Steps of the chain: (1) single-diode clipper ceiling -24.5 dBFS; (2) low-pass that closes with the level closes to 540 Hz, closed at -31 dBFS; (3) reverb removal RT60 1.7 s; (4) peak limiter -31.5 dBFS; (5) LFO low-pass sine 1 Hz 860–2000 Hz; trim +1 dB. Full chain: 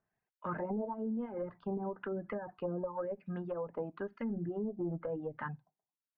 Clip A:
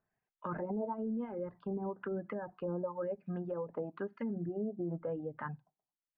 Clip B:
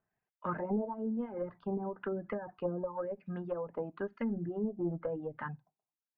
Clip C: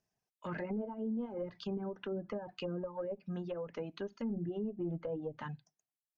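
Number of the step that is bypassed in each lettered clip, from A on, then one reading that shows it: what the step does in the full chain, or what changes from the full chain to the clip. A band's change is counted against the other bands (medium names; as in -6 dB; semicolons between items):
1, 2 kHz band -1.5 dB; 4, crest factor change +1.5 dB; 5, 1 kHz band -4.5 dB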